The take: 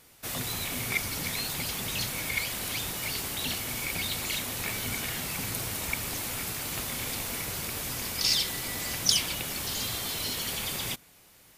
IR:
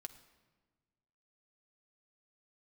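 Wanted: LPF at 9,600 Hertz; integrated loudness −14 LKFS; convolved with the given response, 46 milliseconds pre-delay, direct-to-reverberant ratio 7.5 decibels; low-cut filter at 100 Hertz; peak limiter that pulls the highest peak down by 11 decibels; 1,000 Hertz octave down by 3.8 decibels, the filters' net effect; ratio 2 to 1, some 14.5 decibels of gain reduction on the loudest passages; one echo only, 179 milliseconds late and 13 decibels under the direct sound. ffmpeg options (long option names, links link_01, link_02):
-filter_complex "[0:a]highpass=100,lowpass=9600,equalizer=frequency=1000:width_type=o:gain=-5,acompressor=threshold=-48dB:ratio=2,alimiter=level_in=10.5dB:limit=-24dB:level=0:latency=1,volume=-10.5dB,aecho=1:1:179:0.224,asplit=2[link_01][link_02];[1:a]atrim=start_sample=2205,adelay=46[link_03];[link_02][link_03]afir=irnorm=-1:irlink=0,volume=-2.5dB[link_04];[link_01][link_04]amix=inputs=2:normalize=0,volume=28dB"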